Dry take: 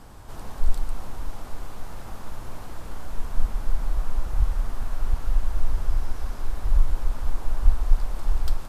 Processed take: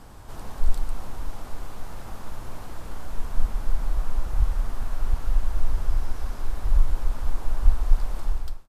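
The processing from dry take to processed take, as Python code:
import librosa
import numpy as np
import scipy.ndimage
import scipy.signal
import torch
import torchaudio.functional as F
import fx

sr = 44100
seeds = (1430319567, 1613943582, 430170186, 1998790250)

y = fx.fade_out_tail(x, sr, length_s=0.5)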